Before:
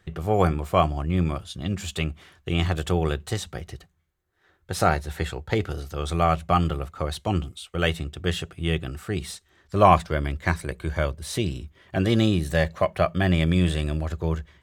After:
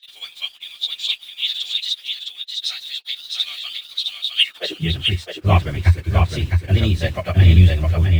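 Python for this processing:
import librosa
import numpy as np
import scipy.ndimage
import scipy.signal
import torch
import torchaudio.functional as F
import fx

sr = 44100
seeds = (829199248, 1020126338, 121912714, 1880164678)

p1 = scipy.signal.sosfilt(scipy.signal.butter(2, 5000.0, 'lowpass', fs=sr, output='sos'), x)
p2 = fx.high_shelf_res(p1, sr, hz=1800.0, db=6.0, q=1.5)
p3 = fx.filter_sweep_highpass(p2, sr, from_hz=3700.0, to_hz=86.0, start_s=7.83, end_s=8.76, q=8.0)
p4 = fx.quant_dither(p3, sr, seeds[0], bits=6, dither='none')
p5 = p3 + F.gain(torch.from_numpy(p4), -3.5).numpy()
p6 = fx.stretch_vocoder_free(p5, sr, factor=0.56)
p7 = p6 + fx.echo_single(p6, sr, ms=660, db=-4.0, dry=0)
y = F.gain(torch.from_numpy(p7), -3.5).numpy()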